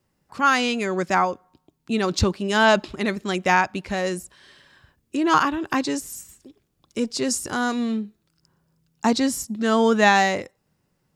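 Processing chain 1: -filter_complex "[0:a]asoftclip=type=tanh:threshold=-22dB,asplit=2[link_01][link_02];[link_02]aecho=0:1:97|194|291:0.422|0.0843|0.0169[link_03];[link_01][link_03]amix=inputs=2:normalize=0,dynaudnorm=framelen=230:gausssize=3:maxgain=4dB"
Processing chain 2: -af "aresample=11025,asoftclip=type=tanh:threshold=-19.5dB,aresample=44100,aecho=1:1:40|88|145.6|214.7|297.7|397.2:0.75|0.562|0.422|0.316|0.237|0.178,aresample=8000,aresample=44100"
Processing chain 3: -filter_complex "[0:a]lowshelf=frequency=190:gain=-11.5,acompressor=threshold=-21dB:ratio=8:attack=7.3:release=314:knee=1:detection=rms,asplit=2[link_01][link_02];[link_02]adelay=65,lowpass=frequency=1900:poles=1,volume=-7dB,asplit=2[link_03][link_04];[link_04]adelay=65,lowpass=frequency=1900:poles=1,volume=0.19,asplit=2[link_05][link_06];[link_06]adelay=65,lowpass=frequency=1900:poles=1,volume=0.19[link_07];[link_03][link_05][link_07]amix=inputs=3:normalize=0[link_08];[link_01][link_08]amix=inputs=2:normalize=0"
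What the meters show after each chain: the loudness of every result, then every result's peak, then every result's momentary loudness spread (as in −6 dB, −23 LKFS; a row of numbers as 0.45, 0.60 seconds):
−23.0, −23.5, −28.0 LKFS; −14.5, −10.0, −10.5 dBFS; 12, 15, 9 LU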